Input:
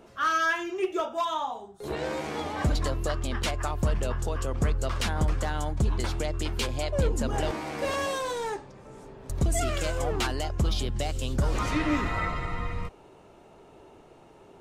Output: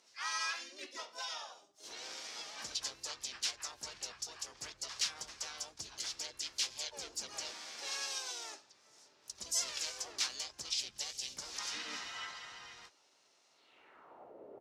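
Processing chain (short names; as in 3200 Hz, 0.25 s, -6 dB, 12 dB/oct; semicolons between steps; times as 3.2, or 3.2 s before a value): harmoniser -7 st -7 dB, -4 st -3 dB, +7 st -6 dB; band-pass sweep 5500 Hz -> 500 Hz, 13.53–14.36; gain +2 dB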